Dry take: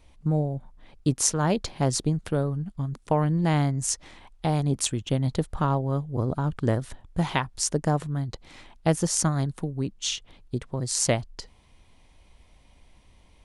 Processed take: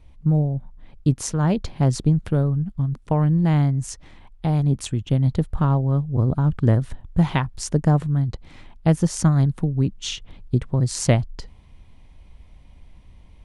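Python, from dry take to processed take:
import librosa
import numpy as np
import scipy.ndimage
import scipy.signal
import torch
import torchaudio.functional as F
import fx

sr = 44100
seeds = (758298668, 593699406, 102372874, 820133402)

y = fx.bass_treble(x, sr, bass_db=9, treble_db=-6)
y = fx.rider(y, sr, range_db=10, speed_s=2.0)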